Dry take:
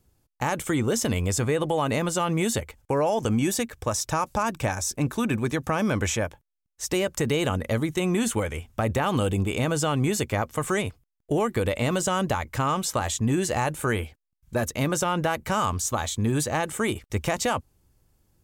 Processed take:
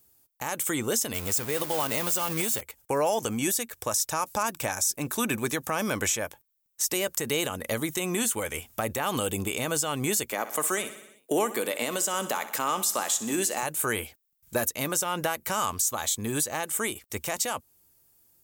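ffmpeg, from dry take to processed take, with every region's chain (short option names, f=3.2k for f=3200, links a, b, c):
-filter_complex "[0:a]asettb=1/sr,asplit=3[a][b][c];[a]atrim=end=1.144[d];[b]atrim=start=1.14:end=2.61,asetpts=PTS-STARTPTS,afade=t=in:d=0.004:c=qsin,afade=t=out:st=1.466:d=0.004:c=qsin,lowshelf=f=110:g=4.5,aeval=exprs='val(0)*gte(abs(val(0)),0.0316)':c=same[e];[c]atrim=start=2.606[f];[d][e]acrossfade=d=0.004:c1=hsin:c2=qsin[g];[g][f]acrossfade=d=0.004:c1=qsin:c2=hsin,asettb=1/sr,asplit=3[h][i][j];[h]atrim=end=10.324[k];[i]atrim=start=10.32:end=13.63,asetpts=PTS-STARTPTS,afade=t=in:d=0.004:c=qsin,afade=t=out:st=3.306:d=0.004:c=qsin,highpass=f=190:w=0.5412,highpass=f=190:w=1.3066,aecho=1:1:62|124|186|248|310|372:0.188|0.109|0.0634|0.0368|0.0213|0.0124,atrim=end_sample=145971[l];[j]atrim=start=13.626[m];[k][l]acrossfade=d=0.004:c1=hsin:c2=qsin[n];[n][m]acrossfade=d=0.004:c1=qsin:c2=hsin,aemphasis=mode=production:type=bsi,dynaudnorm=f=390:g=17:m=6dB,alimiter=limit=-13.5dB:level=0:latency=1:release=362,volume=-1.5dB"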